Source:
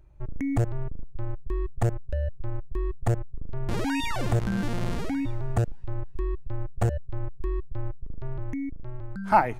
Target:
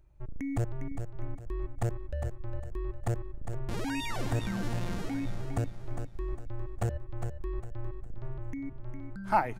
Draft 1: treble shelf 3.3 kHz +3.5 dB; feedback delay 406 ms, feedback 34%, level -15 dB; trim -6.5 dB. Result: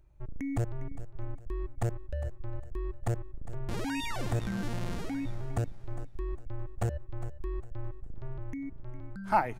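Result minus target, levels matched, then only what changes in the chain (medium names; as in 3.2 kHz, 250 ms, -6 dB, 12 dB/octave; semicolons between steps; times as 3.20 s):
echo-to-direct -7 dB
change: feedback delay 406 ms, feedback 34%, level -8 dB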